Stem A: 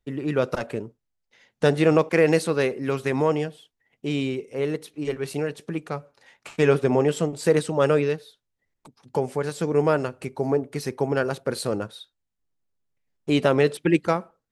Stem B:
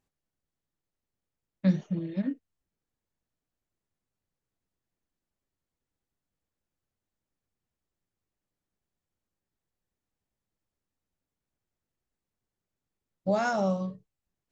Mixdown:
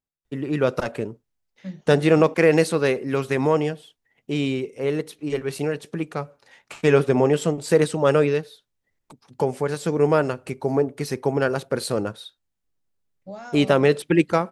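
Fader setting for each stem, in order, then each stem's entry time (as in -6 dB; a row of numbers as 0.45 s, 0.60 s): +2.0 dB, -11.0 dB; 0.25 s, 0.00 s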